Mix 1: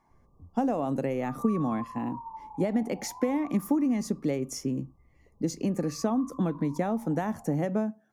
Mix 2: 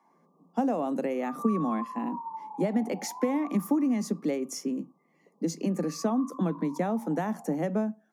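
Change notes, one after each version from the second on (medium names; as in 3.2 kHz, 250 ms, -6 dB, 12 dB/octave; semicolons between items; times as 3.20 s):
background +3.5 dB; master: add steep high-pass 160 Hz 96 dB/octave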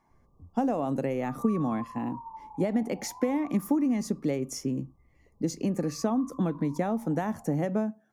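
background -5.0 dB; master: remove steep high-pass 160 Hz 96 dB/octave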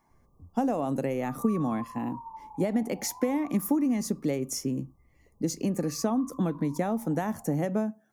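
speech: add treble shelf 8.1 kHz +11 dB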